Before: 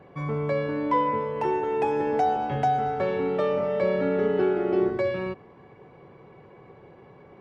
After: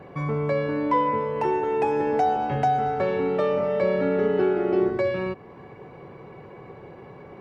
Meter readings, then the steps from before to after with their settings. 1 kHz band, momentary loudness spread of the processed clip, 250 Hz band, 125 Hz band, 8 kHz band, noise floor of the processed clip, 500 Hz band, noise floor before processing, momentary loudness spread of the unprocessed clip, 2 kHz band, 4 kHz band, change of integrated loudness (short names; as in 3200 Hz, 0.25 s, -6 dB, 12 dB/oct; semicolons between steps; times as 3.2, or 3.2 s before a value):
+1.5 dB, 21 LU, +1.5 dB, +2.0 dB, n/a, -45 dBFS, +1.5 dB, -51 dBFS, 4 LU, +2.0 dB, +1.0 dB, +1.5 dB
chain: in parallel at +1 dB: compressor, threshold -38 dBFS, peak gain reduction 17.5 dB; on the sum: notch 3300 Hz, Q 15